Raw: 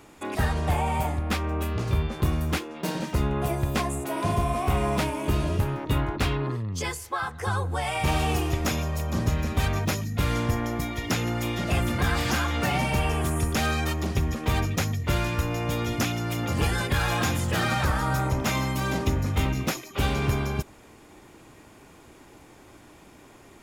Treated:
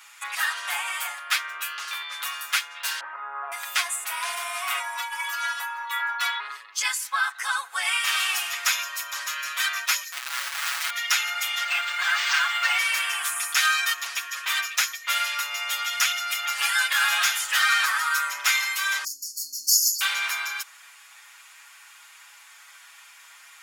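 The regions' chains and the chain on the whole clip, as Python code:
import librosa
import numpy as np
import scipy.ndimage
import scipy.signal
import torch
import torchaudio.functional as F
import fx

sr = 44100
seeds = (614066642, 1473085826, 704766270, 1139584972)

y = fx.chain(x, sr, fx.lowpass(hz=1300.0, slope=24),
    fx.env_flatten(amount_pct=50), at=(3.0, 3.52))
y = fx.chain(y, sr, fx.peak_eq(hz=930.0, db=12.0, octaves=0.71),
    fx.stiff_resonator(f0_hz=170.0, decay_s=0.35, stiffness=0.008),
    fx.env_flatten(amount_pct=100), at=(4.79, 6.4))
y = fx.chain(y, sr, fx.over_compress(threshold_db=-29.0, ratio=-0.5),
    fx.schmitt(flips_db=-38.5), at=(10.12, 10.9))
y = fx.chain(y, sr, fx.peak_eq(hz=380.0, db=-15.0, octaves=0.25),
    fx.resample_linear(factor=4), at=(11.63, 12.78))
y = fx.chain(y, sr, fx.brickwall_bandstop(low_hz=340.0, high_hz=4300.0),
    fx.env_flatten(amount_pct=70), at=(19.04, 20.01))
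y = scipy.signal.sosfilt(scipy.signal.butter(4, 1300.0, 'highpass', fs=sr, output='sos'), y)
y = y + 0.96 * np.pad(y, (int(7.1 * sr / 1000.0), 0))[:len(y)]
y = y * 10.0 ** (6.0 / 20.0)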